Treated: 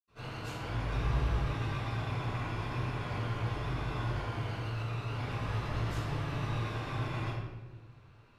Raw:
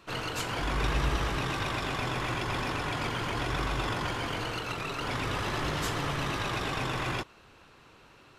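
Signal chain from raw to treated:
parametric band 110 Hz +10.5 dB 0.27 octaves
convolution reverb RT60 1.2 s, pre-delay 76 ms, DRR −60 dB
level −7 dB

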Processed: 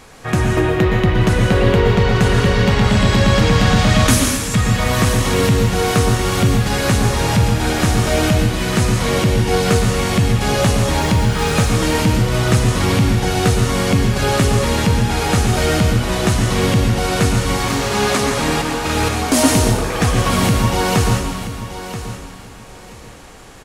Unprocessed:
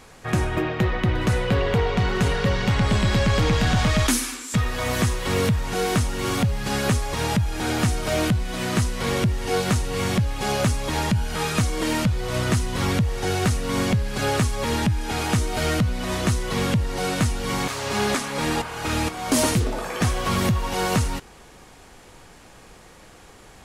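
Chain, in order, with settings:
0:11.00–0:11.53: running median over 3 samples
on a send: repeating echo 980 ms, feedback 22%, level −12 dB
on the sum: dense smooth reverb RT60 0.88 s, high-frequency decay 0.95×, pre-delay 105 ms, DRR 2.5 dB
level +5 dB

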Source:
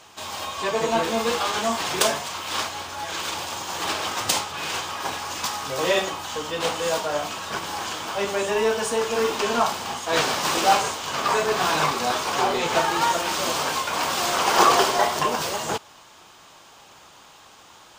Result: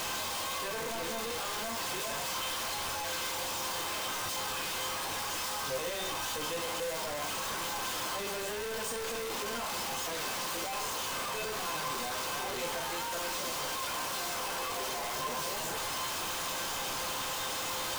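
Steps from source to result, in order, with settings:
sign of each sample alone
tuned comb filter 520 Hz, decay 0.39 s, mix 80%
level +1.5 dB

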